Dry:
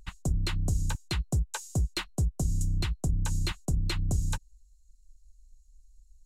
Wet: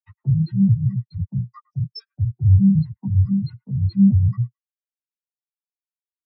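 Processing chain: trilling pitch shifter +4 st, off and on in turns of 0.171 s; Chebyshev band-pass 100–5400 Hz, order 4; compressor 6:1, threshold -37 dBFS, peak gain reduction 11 dB; notches 60/120/180/240 Hz; chorus voices 2, 0.42 Hz, delay 11 ms, depth 4.7 ms; sample leveller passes 5; tilt shelf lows -4 dB, about 730 Hz; on a send: band-limited delay 0.107 s, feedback 43%, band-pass 1500 Hz, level -8 dB; on the sum: dynamic EQ 3000 Hz, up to -6 dB, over -48 dBFS, Q 1.3; maximiser +28 dB; spectral expander 4:1; gain -5 dB

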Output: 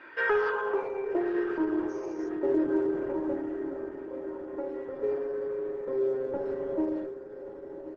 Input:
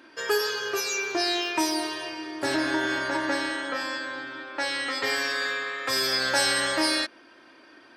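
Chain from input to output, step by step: 0.5–1.27 median filter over 9 samples; Bessel high-pass 200 Hz, order 8; comb 2.1 ms, depth 63%; dynamic EQ 4000 Hz, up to -6 dB, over -42 dBFS, Q 2.5; 3.33–4.11 fixed phaser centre 740 Hz, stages 8; soft clip -21.5 dBFS, distortion -14 dB; low-pass sweep 1900 Hz -> 390 Hz, 0.13–1.48; on a send: diffused feedback echo 1.158 s, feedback 50%, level -11 dB; 1.89–2.29 on the sum: careless resampling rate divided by 6×, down none, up hold; brick-wall FIR low-pass 6700 Hz; Opus 12 kbps 48000 Hz

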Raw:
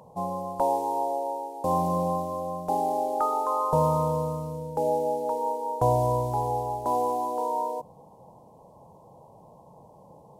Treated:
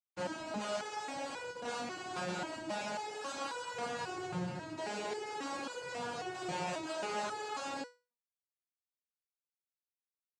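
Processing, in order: Schmitt trigger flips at -35.5 dBFS; noise vocoder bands 8; stepped resonator 3.7 Hz 180–490 Hz; gain +3.5 dB

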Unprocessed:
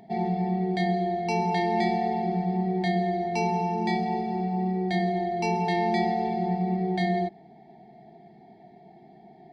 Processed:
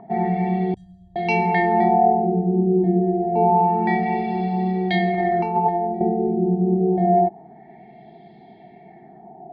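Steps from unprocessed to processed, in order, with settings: 0.74–1.16 inverse Chebyshev band-stop 220–4600 Hz, stop band 40 dB; 5.14–6.01 negative-ratio compressor -28 dBFS, ratio -0.5; LFO low-pass sine 0.27 Hz 360–3500 Hz; gain +5 dB

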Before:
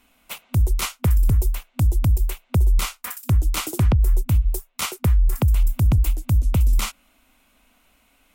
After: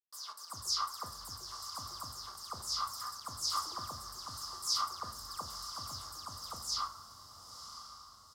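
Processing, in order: spectral delay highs early, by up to 0.169 s; high shelf 3600 Hz +11.5 dB; limiter -10 dBFS, peak gain reduction 6.5 dB; bit-crush 6-bit; double band-pass 2400 Hz, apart 2.1 oct; doubler 42 ms -13 dB; diffused feedback echo 0.982 s, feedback 45%, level -10.5 dB; reverb RT60 0.95 s, pre-delay 5 ms, DRR 7.5 dB

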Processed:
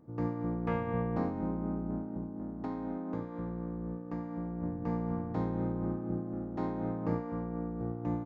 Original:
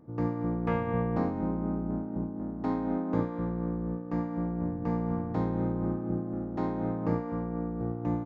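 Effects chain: 2.12–4.63 compressor 3:1, threshold -31 dBFS, peak gain reduction 7.5 dB; gain -3.5 dB

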